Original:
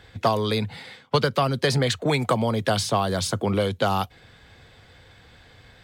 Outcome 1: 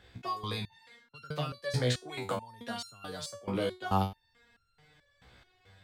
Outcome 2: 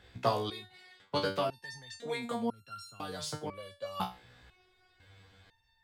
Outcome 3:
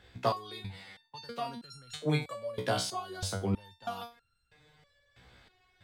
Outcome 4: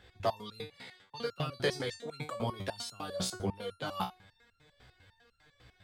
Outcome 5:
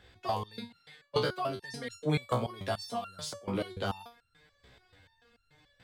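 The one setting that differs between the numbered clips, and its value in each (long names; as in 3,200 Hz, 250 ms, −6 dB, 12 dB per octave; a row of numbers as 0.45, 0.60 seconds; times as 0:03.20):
step-sequenced resonator, speed: 4.6, 2, 3.1, 10, 6.9 Hertz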